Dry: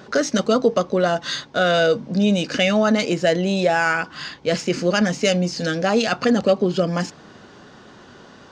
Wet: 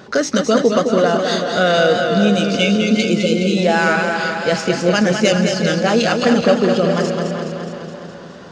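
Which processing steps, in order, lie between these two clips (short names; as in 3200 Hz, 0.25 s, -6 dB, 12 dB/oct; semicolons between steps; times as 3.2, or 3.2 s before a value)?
spectral delete 2.31–3.57, 580–2100 Hz; dark delay 0.381 s, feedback 36%, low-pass 2900 Hz, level -9 dB; warbling echo 0.209 s, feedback 66%, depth 73 cents, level -6 dB; gain +2.5 dB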